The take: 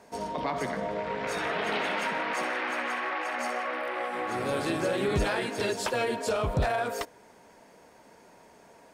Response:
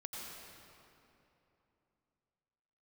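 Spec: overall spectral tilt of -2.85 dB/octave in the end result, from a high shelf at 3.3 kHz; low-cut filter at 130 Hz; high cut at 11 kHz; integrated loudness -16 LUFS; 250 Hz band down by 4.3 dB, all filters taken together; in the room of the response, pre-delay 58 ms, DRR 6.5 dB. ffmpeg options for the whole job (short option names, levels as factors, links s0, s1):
-filter_complex "[0:a]highpass=130,lowpass=11000,equalizer=f=250:t=o:g=-5.5,highshelf=f=3300:g=5.5,asplit=2[s0][s1];[1:a]atrim=start_sample=2205,adelay=58[s2];[s1][s2]afir=irnorm=-1:irlink=0,volume=0.531[s3];[s0][s3]amix=inputs=2:normalize=0,volume=4.47"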